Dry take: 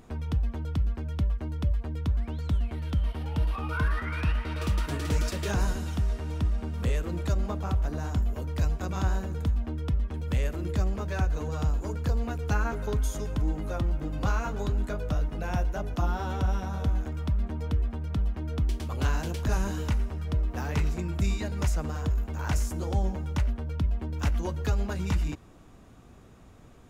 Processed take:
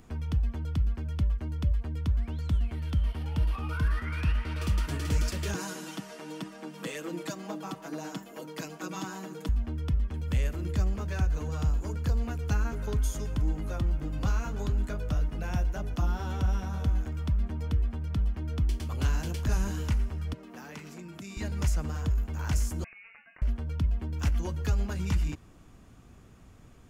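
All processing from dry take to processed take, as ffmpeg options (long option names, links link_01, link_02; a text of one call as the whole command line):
ffmpeg -i in.wav -filter_complex "[0:a]asettb=1/sr,asplit=3[link_01][link_02][link_03];[link_01]atrim=end=5.544[link_04];[link_02]atrim=start=5.54:end=9.49,asetpts=PTS-STARTPTS,afade=type=in:duration=0.004:curve=qsin,afade=type=out:start_time=3.946:duration=0.004:curve=qsin,highpass=frequency=220:width=0.5412,highpass=frequency=220:width=1.3066,aecho=1:1:6.2:0.96,atrim=end_sample=174195[link_05];[link_03]atrim=start=9.486[link_06];[link_04][link_05]acrossfade=duration=0.004:curve1=hsin:curve2=qsin[link_07];[link_07][link_06]acrossfade=duration=0.004:curve1=qsin:curve2=hsin,asettb=1/sr,asplit=3[link_08][link_09][link_10];[link_08]atrim=end=20.334[link_11];[link_09]atrim=start=20.33:end=21.37,asetpts=PTS-STARTPTS,afade=type=in:duration=0.004:curve=qsin,afade=type=out:start_time=1.036:duration=0.004:curve=qsin,highpass=frequency=170:width=0.5412,highpass=frequency=170:width=1.3066,acompressor=threshold=-40dB:ratio=2.5:attack=3.2:release=140:knee=1:detection=peak[link_12];[link_10]atrim=start=21.366[link_13];[link_11][link_12]acrossfade=duration=0.004:curve1=hsin:curve2=qsin[link_14];[link_14][link_13]acrossfade=duration=0.004:curve1=qsin:curve2=hsin,asettb=1/sr,asplit=3[link_15][link_16][link_17];[link_15]atrim=end=22.844[link_18];[link_16]atrim=start=22.84:end=23.42,asetpts=PTS-STARTPTS,afade=type=in:duration=0.004:curve=qsin,afade=type=out:start_time=0.576:duration=0.004:curve=qsin,highpass=1200,acompressor=threshold=-44dB:ratio=10:attack=3.2:release=140:knee=1:detection=peak,lowpass=frequency=2600:width_type=q:width=0.5098,lowpass=frequency=2600:width_type=q:width=0.6013,lowpass=frequency=2600:width_type=q:width=0.9,lowpass=frequency=2600:width_type=q:width=2.563,afreqshift=-3000[link_19];[link_17]atrim=start=23.416[link_20];[link_18][link_19]acrossfade=duration=0.004:curve1=hsin:curve2=qsin[link_21];[link_21][link_20]acrossfade=duration=0.004:curve1=qsin:curve2=hsin,equalizer=frequency=600:width_type=o:width=2.2:gain=-5,bandreject=frequency=3800:width=17,acrossover=split=500|3000[link_22][link_23][link_24];[link_23]acompressor=threshold=-38dB:ratio=6[link_25];[link_22][link_25][link_24]amix=inputs=3:normalize=0" out.wav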